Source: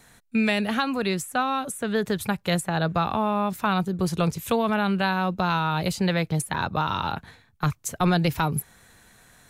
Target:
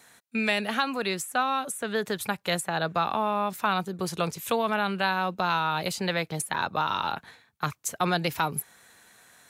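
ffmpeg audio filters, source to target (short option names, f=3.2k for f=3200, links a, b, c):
-af "highpass=f=450:p=1"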